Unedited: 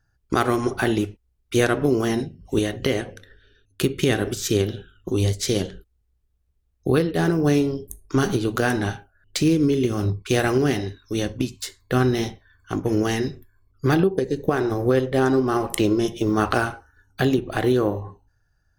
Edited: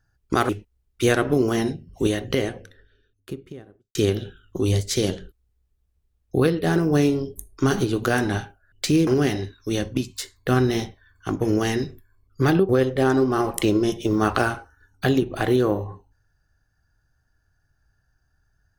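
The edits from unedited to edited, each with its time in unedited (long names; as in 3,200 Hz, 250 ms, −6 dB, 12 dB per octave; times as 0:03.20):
0:00.49–0:01.01: remove
0:02.67–0:04.47: fade out and dull
0:09.59–0:10.51: remove
0:14.13–0:14.85: remove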